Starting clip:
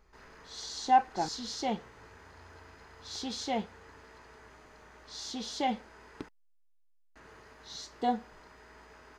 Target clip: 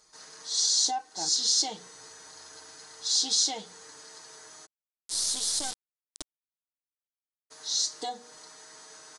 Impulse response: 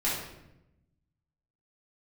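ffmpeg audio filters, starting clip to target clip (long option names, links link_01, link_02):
-filter_complex "[0:a]highpass=frequency=270:poles=1,highshelf=frequency=6500:gain=4,bandreject=frequency=60:width_type=h:width=6,bandreject=frequency=120:width_type=h:width=6,bandreject=frequency=180:width_type=h:width=6,bandreject=frequency=240:width_type=h:width=6,bandreject=frequency=300:width_type=h:width=6,bandreject=frequency=360:width_type=h:width=6,bandreject=frequency=420:width_type=h:width=6,bandreject=frequency=480:width_type=h:width=6,aecho=1:1:6.5:0.61,acompressor=threshold=-36dB:ratio=2.5,asplit=3[link_01][link_02][link_03];[link_01]afade=type=out:start_time=4.65:duration=0.02[link_04];[link_02]acrusher=bits=4:dc=4:mix=0:aa=0.000001,afade=type=in:start_time=4.65:duration=0.02,afade=type=out:start_time=7.5:duration=0.02[link_05];[link_03]afade=type=in:start_time=7.5:duration=0.02[link_06];[link_04][link_05][link_06]amix=inputs=3:normalize=0,aexciter=amount=6.1:drive=6.1:freq=3700,aresample=22050,aresample=44100"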